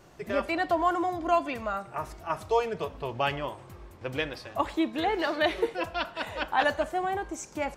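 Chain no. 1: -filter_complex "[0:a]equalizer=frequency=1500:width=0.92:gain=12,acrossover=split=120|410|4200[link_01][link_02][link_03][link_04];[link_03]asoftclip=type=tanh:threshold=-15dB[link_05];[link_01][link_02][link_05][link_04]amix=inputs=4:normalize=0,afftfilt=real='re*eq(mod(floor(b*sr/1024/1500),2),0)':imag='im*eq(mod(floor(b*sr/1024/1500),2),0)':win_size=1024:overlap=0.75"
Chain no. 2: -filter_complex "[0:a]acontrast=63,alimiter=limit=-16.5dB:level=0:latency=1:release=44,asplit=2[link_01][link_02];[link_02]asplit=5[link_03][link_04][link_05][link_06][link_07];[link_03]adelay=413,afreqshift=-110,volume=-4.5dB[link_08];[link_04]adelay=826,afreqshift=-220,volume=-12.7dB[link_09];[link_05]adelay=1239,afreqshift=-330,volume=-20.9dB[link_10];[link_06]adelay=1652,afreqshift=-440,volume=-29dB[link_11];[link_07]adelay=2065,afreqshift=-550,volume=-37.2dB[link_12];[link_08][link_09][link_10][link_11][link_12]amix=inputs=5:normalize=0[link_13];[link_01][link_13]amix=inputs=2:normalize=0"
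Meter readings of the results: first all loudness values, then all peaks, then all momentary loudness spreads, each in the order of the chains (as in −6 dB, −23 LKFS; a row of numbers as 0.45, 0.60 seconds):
−27.0, −26.0 LKFS; −12.0, −12.0 dBFS; 9, 6 LU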